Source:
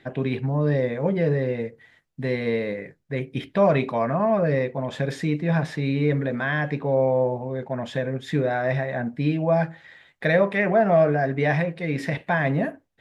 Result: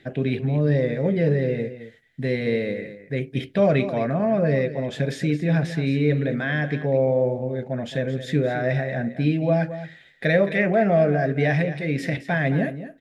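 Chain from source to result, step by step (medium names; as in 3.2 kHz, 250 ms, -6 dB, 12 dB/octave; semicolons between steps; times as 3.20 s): peaking EQ 1 kHz -13.5 dB 0.64 oct; on a send: delay 218 ms -12.5 dB; on the sum: trim +2 dB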